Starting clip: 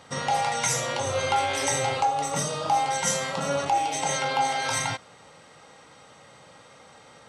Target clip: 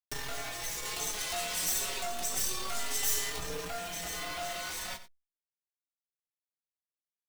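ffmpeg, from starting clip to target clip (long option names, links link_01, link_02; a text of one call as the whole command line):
ffmpeg -i in.wav -filter_complex "[0:a]highpass=110,equalizer=frequency=660:width=0.85:gain=-7.5,bandreject=frequency=1400:width=20,afreqshift=-110,aeval=exprs='0.237*(cos(1*acos(clip(val(0)/0.237,-1,1)))-cos(1*PI/2))+0.075*(cos(6*acos(clip(val(0)/0.237,-1,1)))-cos(6*PI/2))':channel_layout=same,asoftclip=type=tanh:threshold=-23dB,asettb=1/sr,asplit=3[link_01][link_02][link_03];[link_01]atrim=end=0.854[link_04];[link_02]atrim=start=0.85:end=3.39,asetpts=PTS-STARTPTS,afade=type=in:duration=0.004:curve=qsin,afade=type=out:start_time=2.536:duration=0.004:curve=qsin,highshelf=frequency=4800:gain=11[link_05];[link_03]atrim=start=3.386[link_06];[link_04][link_05]acrossfade=duration=0.004:curve1=hsin:curve2=qsin[link_07];[link_07][link_06]acrossfade=duration=0.004:curve1=qsin:curve2=hsin,acrusher=bits=5:mix=0:aa=0.000001,asplit=2[link_08][link_09];[link_09]adelay=16,volume=-9.5dB[link_10];[link_08][link_10]amix=inputs=2:normalize=0,aecho=1:1:91:0.158,acompressor=mode=upward:threshold=-26dB:ratio=2.5,asplit=2[link_11][link_12];[link_12]adelay=4.6,afreqshift=0.32[link_13];[link_11][link_13]amix=inputs=2:normalize=1,volume=-3.5dB" out.wav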